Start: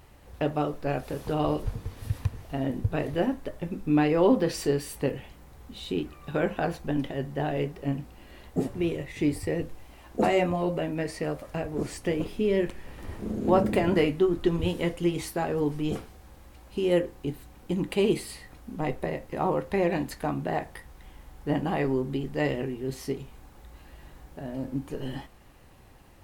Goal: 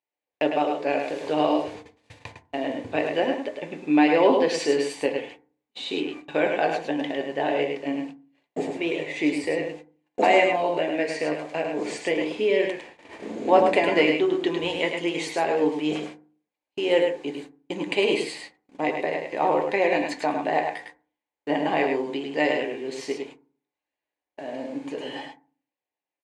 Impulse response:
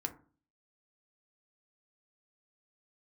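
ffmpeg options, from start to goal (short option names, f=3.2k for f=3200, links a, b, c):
-filter_complex "[0:a]highpass=470,equalizer=f=1.3k:t=q:w=4:g=-10,equalizer=f=2.3k:t=q:w=4:g=5,equalizer=f=5.5k:t=q:w=4:g=-5,lowpass=f=7.3k:w=0.5412,lowpass=f=7.3k:w=1.3066,aecho=1:1:104:0.562,agate=range=-40dB:threshold=-47dB:ratio=16:detection=peak,asplit=2[a][b];[1:a]atrim=start_sample=2205[c];[b][c]afir=irnorm=-1:irlink=0,volume=2.5dB[d];[a][d]amix=inputs=2:normalize=0"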